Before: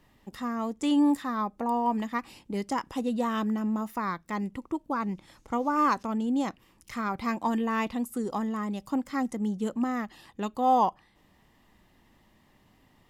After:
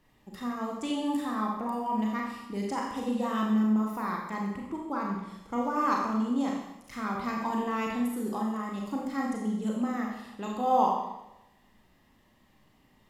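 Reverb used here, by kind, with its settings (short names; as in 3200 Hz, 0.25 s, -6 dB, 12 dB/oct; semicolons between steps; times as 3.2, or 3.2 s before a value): Schroeder reverb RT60 0.91 s, combs from 29 ms, DRR -1.5 dB; gain -5 dB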